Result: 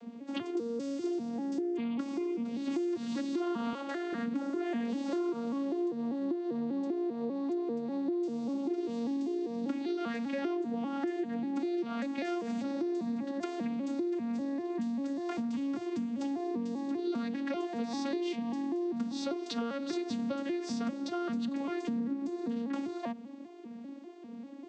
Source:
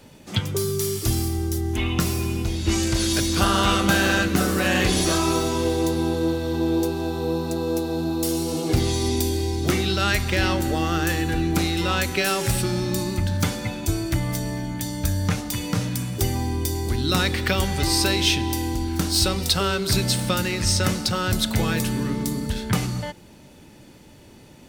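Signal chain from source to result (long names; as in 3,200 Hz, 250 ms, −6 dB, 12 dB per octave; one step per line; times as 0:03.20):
vocoder with an arpeggio as carrier minor triad, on A#3, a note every 197 ms
spectral tilt −1.5 dB per octave
downward compressor 6 to 1, threshold −32 dBFS, peak gain reduction 17.5 dB
0:03.73–0:04.13: high-pass filter 390 Hz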